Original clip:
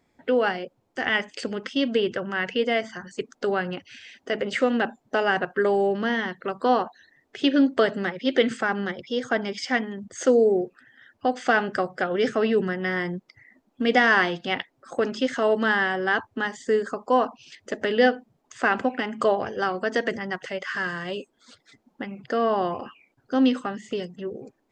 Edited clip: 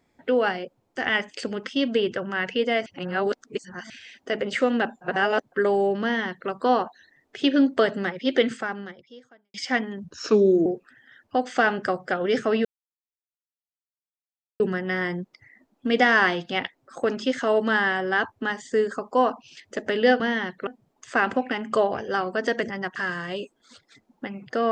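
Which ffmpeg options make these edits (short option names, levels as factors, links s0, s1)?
-filter_complex "[0:a]asplit=12[s0][s1][s2][s3][s4][s5][s6][s7][s8][s9][s10][s11];[s0]atrim=end=2.862[s12];[s1]atrim=start=2.858:end=3.902,asetpts=PTS-STARTPTS,areverse[s13];[s2]atrim=start=3.898:end=5.012[s14];[s3]atrim=start=5.008:end=5.522,asetpts=PTS-STARTPTS,areverse[s15];[s4]atrim=start=5.518:end=9.54,asetpts=PTS-STARTPTS,afade=t=out:st=2.872:d=1.15:c=qua[s16];[s5]atrim=start=9.54:end=10.044,asetpts=PTS-STARTPTS,afade=t=in:d=0.004:c=hsin[s17];[s6]atrim=start=10.04:end=10.56,asetpts=PTS-STARTPTS,asetrate=37044,aresample=44100[s18];[s7]atrim=start=10.556:end=12.55,asetpts=PTS-STARTPTS,afade=t=out:st=1.99:d=0.004:c=hsin,apad=pad_dur=1.95[s19];[s8]atrim=start=12.55:end=18.152,asetpts=PTS-STARTPTS,afade=t=in:d=0.004:c=hsin[s20];[s9]atrim=start=6.018:end=6.492[s21];[s10]atrim=start=18.148:end=20.442[s22];[s11]atrim=start=20.728[s23];[s12][s13]acrossfade=d=0.004:c1=hsin:c2=hsin[s24];[s24][s14]acrossfade=d=0.004:c1=hsin:c2=hsin[s25];[s25][s15]acrossfade=d=0.004:c1=hsin:c2=hsin[s26];[s16][s17]concat=n=2:v=0:a=1[s27];[s26][s27]acrossfade=d=0.004:c1=hsin:c2=hsin[s28];[s28][s18]acrossfade=d=0.004:c1=hsin:c2=hsin[s29];[s19][s20]concat=n=2:v=0:a=1[s30];[s29][s30]acrossfade=d=0.004:c1=hsin:c2=hsin[s31];[s31][s21]acrossfade=d=0.004:c1=hsin:c2=hsin[s32];[s32][s22]acrossfade=d=0.004:c1=hsin:c2=hsin[s33];[s33][s23]acrossfade=d=0.004:c1=hsin:c2=hsin"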